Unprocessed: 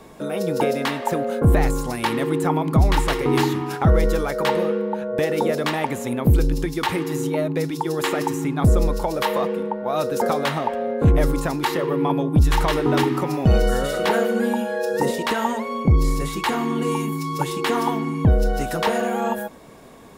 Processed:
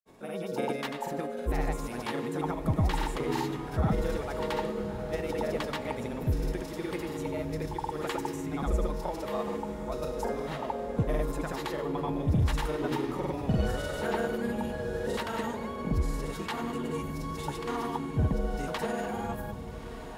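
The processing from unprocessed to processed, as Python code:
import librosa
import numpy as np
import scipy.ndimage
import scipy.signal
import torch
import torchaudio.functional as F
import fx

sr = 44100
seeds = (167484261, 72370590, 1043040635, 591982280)

p1 = fx.comb_fb(x, sr, f0_hz=210.0, decay_s=1.5, harmonics='all', damping=0.0, mix_pct=70)
p2 = fx.granulator(p1, sr, seeds[0], grain_ms=100.0, per_s=20.0, spray_ms=100.0, spread_st=0)
y = p2 + fx.echo_diffused(p2, sr, ms=1263, feedback_pct=57, wet_db=-11.0, dry=0)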